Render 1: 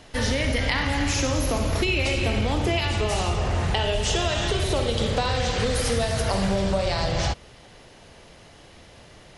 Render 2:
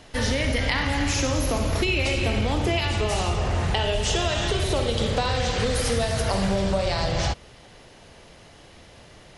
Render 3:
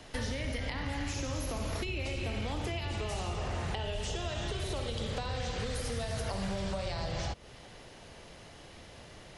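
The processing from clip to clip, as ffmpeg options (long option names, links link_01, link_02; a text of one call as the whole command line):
ffmpeg -i in.wav -af anull out.wav
ffmpeg -i in.wav -filter_complex "[0:a]acrossover=split=190|780[link_01][link_02][link_03];[link_01]acompressor=threshold=-34dB:ratio=4[link_04];[link_02]acompressor=threshold=-39dB:ratio=4[link_05];[link_03]acompressor=threshold=-39dB:ratio=4[link_06];[link_04][link_05][link_06]amix=inputs=3:normalize=0,volume=-2.5dB" out.wav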